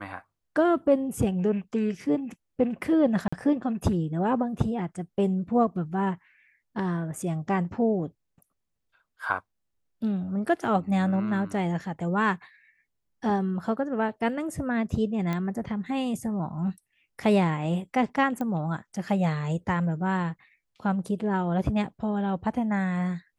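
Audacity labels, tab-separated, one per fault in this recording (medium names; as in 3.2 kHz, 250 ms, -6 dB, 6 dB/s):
3.280000	3.330000	dropout 45 ms
15.330000	15.330000	pop -17 dBFS
18.410000	18.410000	pop -20 dBFS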